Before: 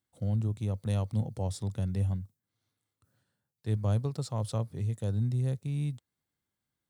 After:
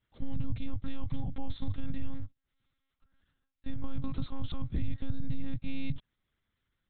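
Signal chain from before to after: 2.09–3.77 s: partial rectifier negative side -7 dB; compression, threshold -31 dBFS, peak gain reduction 8 dB; peaking EQ 520 Hz -14.5 dB 0.95 oct; peak limiter -32 dBFS, peak gain reduction 6.5 dB; dynamic bell 100 Hz, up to +4 dB, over -50 dBFS, Q 1.1; monotone LPC vocoder at 8 kHz 270 Hz; trim +9 dB

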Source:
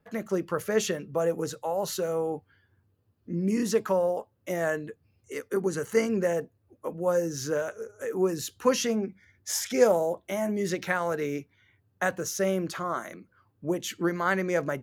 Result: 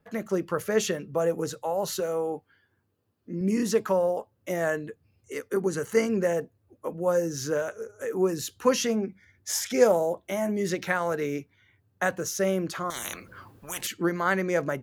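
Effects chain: 2.00–3.41 s: peaking EQ 77 Hz -10.5 dB 2 oct; 12.90–13.87 s: spectrum-flattening compressor 10:1; trim +1 dB

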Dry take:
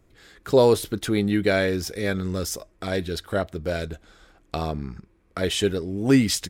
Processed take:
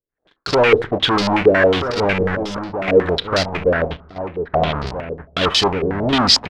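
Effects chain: square wave that keeps the level; 3.72–4.87 s: distance through air 190 m; waveshaping leveller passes 3; gate -41 dBFS, range -25 dB; bass shelf 300 Hz -5 dB; reverberation RT60 0.60 s, pre-delay 7 ms, DRR 15.5 dB; 2.35–2.88 s: level held to a coarse grid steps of 24 dB; echo from a far wall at 220 m, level -8 dB; 5.72–6.13 s: de-esser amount 60%; step-sequenced low-pass 11 Hz 460–4700 Hz; trim -6 dB

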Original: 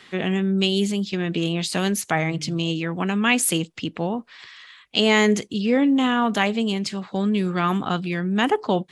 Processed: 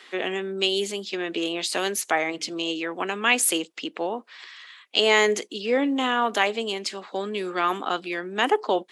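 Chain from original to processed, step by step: high-pass 320 Hz 24 dB/octave

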